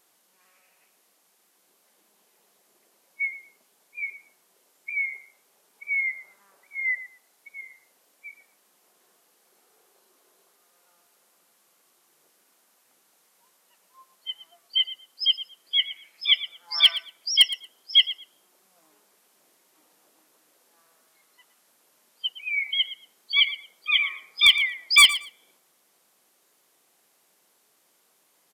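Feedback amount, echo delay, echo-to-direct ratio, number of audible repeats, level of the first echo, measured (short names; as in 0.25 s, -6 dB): 17%, 0.115 s, -15.0 dB, 2, -15.0 dB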